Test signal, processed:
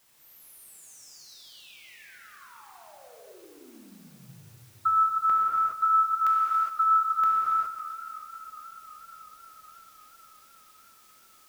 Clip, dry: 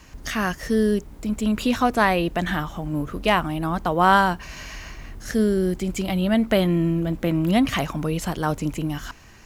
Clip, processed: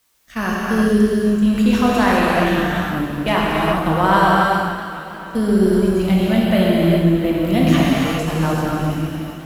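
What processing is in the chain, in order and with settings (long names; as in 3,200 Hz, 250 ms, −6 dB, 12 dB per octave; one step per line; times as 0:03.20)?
noise gate −26 dBFS, range −44 dB
in parallel at −1 dB: brickwall limiter −15 dBFS
on the sum: bit-depth reduction 10 bits, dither triangular
on a send: echo with a time of its own for lows and highs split 1,100 Hz, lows 100 ms, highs 279 ms, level −11.5 dB
on the sum: reverb whose tail is shaped and stops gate 440 ms flat, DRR −5 dB
feedback echo with a swinging delay time 553 ms, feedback 65%, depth 101 cents, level −18 dB
level −5 dB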